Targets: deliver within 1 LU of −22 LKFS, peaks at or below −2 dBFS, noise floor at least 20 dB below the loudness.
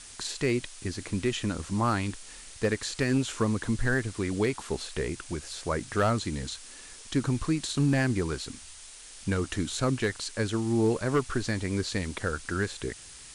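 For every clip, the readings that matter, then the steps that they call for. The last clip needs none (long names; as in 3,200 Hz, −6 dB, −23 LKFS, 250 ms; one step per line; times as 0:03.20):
share of clipped samples 0.3%; peaks flattened at −17.5 dBFS; background noise floor −47 dBFS; target noise floor −50 dBFS; integrated loudness −29.5 LKFS; sample peak −17.5 dBFS; target loudness −22.0 LKFS
→ clipped peaks rebuilt −17.5 dBFS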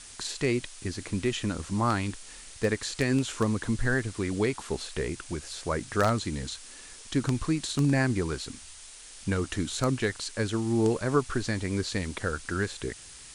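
share of clipped samples 0.0%; background noise floor −47 dBFS; target noise floor −50 dBFS
→ broadband denoise 6 dB, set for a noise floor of −47 dBFS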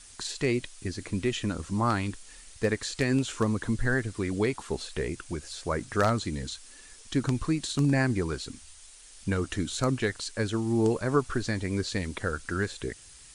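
background noise floor −51 dBFS; integrated loudness −29.5 LKFS; sample peak −8.5 dBFS; target loudness −22.0 LKFS
→ level +7.5 dB
brickwall limiter −2 dBFS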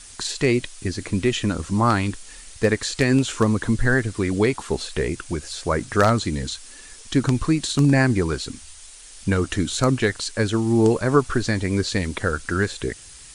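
integrated loudness −22.0 LKFS; sample peak −2.0 dBFS; background noise floor −43 dBFS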